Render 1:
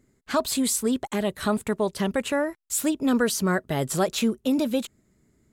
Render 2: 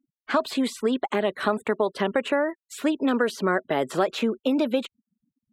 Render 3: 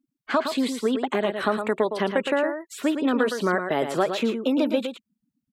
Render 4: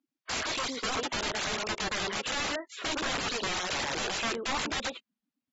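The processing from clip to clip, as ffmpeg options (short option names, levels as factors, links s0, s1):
-filter_complex "[0:a]afftfilt=real='re*gte(hypot(re,im),0.00562)':imag='im*gte(hypot(re,im),0.00562)':win_size=1024:overlap=0.75,acrossover=split=240 3500:gain=0.0631 1 0.126[s0][s1][s2];[s0][s1][s2]amix=inputs=3:normalize=0,acrossover=split=1500|5700[s3][s4][s5];[s3]acompressor=threshold=0.0501:ratio=4[s6];[s4]acompressor=threshold=0.0112:ratio=4[s7];[s5]acompressor=threshold=0.00316:ratio=4[s8];[s6][s7][s8]amix=inputs=3:normalize=0,volume=2.11"
-af "aecho=1:1:113:0.422"
-filter_complex "[0:a]acrossover=split=340 6700:gain=0.1 1 0.126[s0][s1][s2];[s0][s1][s2]amix=inputs=3:normalize=0,aeval=exprs='(mod(22.4*val(0)+1,2)-1)/22.4':c=same" -ar 44100 -c:a aac -b:a 24k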